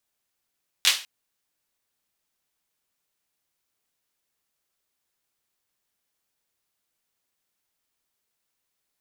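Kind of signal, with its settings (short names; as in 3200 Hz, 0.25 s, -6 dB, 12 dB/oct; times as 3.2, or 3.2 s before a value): hand clap length 0.20 s, bursts 3, apart 11 ms, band 3300 Hz, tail 0.34 s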